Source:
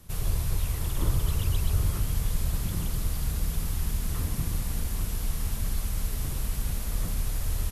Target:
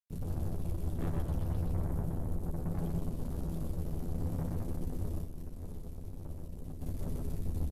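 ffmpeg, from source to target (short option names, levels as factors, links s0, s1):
-filter_complex "[0:a]acrossover=split=120|450|2600[s0][s1][s2][s3];[s1]acontrast=66[s4];[s0][s4][s2][s3]amix=inputs=4:normalize=0,asettb=1/sr,asplit=3[s5][s6][s7];[s5]atrim=end=1.724[s8];[s6]atrim=start=1.72:end=2.73,asetpts=PTS-STARTPTS,afade=t=in:d=0.004:c=qsin,afade=t=out:st=1.006:d=0.004:c=qsin,equalizer=f=2900:w=0.38:g=-7[s9];[s7]atrim=start=2.726[s10];[s8][s9]acrossfade=d=0.004:c1=hsin:c2=qsin[s11];[s11][s10]acrossfade=d=0.004:c1=qsin:c2=hsin,aeval=exprs='(tanh(14.1*val(0)+0.4)-tanh(0.4))/14.1':c=same,afwtdn=0.0316,acrusher=bits=4:mix=0:aa=0.5,aecho=1:1:128:0.631,asplit=3[s12][s13][s14];[s12]afade=t=out:st=5.23:d=0.02[s15];[s13]acompressor=threshold=0.0282:ratio=6,afade=t=in:st=5.23:d=0.02,afade=t=out:st=6.8:d=0.02[s16];[s14]afade=t=in:st=6.8:d=0.02[s17];[s15][s16][s17]amix=inputs=3:normalize=0,asplit=2[s18][s19];[s19]adelay=12,volume=0.562[s20];[s18][s20]amix=inputs=2:normalize=0,volume=0.447"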